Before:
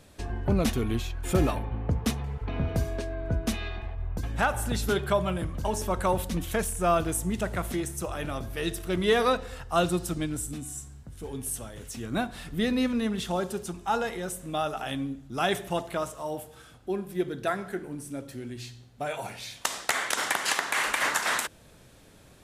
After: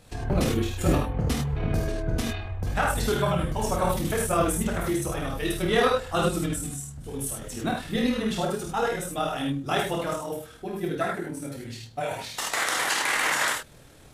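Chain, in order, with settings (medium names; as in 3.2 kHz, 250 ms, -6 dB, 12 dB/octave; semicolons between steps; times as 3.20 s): gated-style reverb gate 180 ms flat, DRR -2 dB; granular stretch 0.63×, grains 51 ms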